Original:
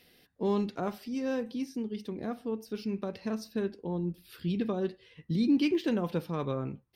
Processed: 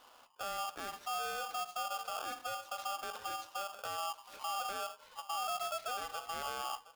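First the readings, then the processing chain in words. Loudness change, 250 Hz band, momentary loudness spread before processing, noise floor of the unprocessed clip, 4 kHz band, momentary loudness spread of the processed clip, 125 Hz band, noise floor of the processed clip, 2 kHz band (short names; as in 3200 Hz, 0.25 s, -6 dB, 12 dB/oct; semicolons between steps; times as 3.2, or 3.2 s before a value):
-6.5 dB, -31.5 dB, 10 LU, -65 dBFS, +3.5 dB, 4 LU, under -25 dB, -61 dBFS, +1.5 dB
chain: tilt -2.5 dB/oct; compressor, threshold -31 dBFS, peak gain reduction 13.5 dB; limiter -32.5 dBFS, peak gain reduction 10 dB; echo 0.719 s -17 dB; polarity switched at an audio rate 990 Hz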